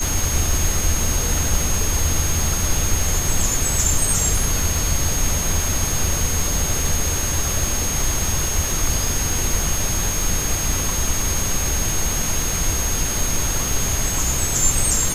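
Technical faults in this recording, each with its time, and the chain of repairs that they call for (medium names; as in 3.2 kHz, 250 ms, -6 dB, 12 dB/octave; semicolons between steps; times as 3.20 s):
crackle 55 per s -24 dBFS
whine 6.5 kHz -24 dBFS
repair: de-click; band-stop 6.5 kHz, Q 30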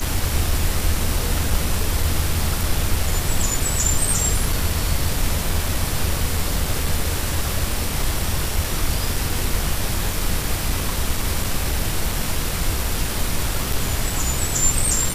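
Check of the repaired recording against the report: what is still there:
nothing left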